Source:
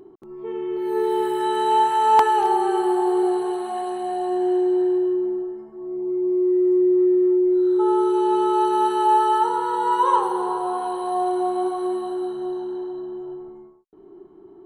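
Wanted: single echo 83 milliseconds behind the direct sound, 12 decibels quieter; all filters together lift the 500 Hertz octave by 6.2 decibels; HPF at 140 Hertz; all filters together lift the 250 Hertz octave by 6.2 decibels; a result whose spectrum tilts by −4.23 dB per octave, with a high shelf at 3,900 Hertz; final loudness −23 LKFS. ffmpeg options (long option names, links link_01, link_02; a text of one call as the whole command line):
ffmpeg -i in.wav -af "highpass=140,equalizer=frequency=250:width_type=o:gain=6,equalizer=frequency=500:width_type=o:gain=6.5,highshelf=frequency=3900:gain=-4,aecho=1:1:83:0.251,volume=-7.5dB" out.wav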